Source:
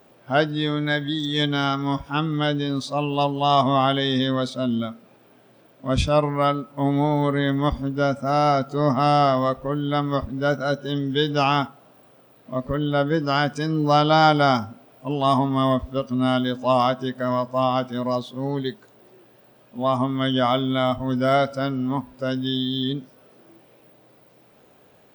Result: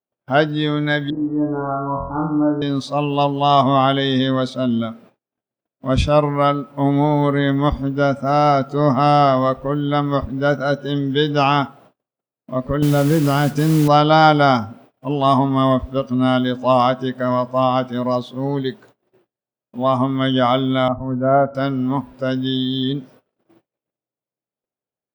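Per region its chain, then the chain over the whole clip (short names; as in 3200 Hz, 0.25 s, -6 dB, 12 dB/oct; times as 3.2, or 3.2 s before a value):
1.1–2.62 compressor 1.5:1, threshold -27 dBFS + steep low-pass 1200 Hz 48 dB/oct + flutter echo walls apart 4 m, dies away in 0.61 s
12.82–13.88 low shelf 440 Hz +10.5 dB + compressor 2.5:1, threshold -17 dBFS + modulation noise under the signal 14 dB
20.88–21.55 LPF 1300 Hz 24 dB/oct + three-band expander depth 70%
whole clip: high shelf 4500 Hz -7 dB; gate -49 dBFS, range -42 dB; gain +4.5 dB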